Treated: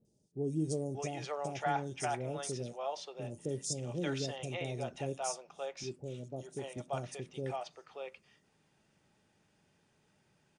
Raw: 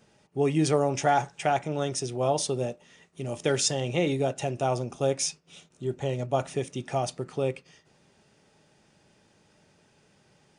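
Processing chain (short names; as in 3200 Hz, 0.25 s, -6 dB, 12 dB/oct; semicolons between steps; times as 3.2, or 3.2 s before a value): 5.83–6.77 HPF 180 Hz 6 dB/oct; three bands offset in time lows, highs, mids 50/580 ms, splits 520/5100 Hz; gain -8.5 dB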